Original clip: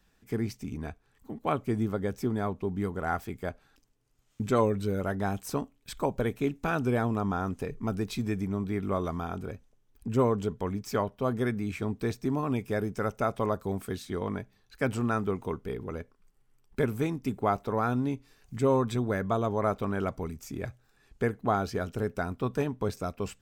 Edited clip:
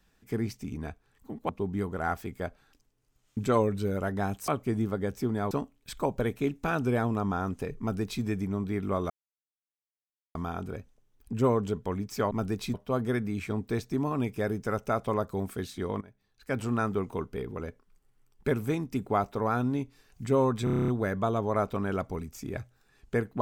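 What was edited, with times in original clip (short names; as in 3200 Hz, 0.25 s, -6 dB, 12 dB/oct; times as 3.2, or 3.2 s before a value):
1.49–2.52 move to 5.51
7.8–8.23 copy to 11.06
9.1 insert silence 1.25 s
14.33–15.07 fade in, from -21 dB
18.96 stutter 0.03 s, 9 plays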